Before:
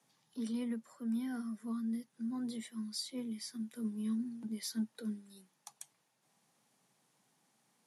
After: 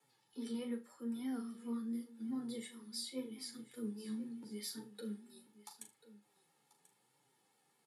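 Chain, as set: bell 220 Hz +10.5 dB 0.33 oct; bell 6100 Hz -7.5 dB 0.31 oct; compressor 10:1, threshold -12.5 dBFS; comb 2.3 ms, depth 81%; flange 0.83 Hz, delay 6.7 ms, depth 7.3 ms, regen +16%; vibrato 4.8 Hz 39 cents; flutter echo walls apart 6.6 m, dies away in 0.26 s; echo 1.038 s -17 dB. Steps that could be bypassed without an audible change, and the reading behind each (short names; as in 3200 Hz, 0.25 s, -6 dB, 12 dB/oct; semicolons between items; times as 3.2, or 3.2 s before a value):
compressor, threshold -12.5 dBFS: input peak -18.0 dBFS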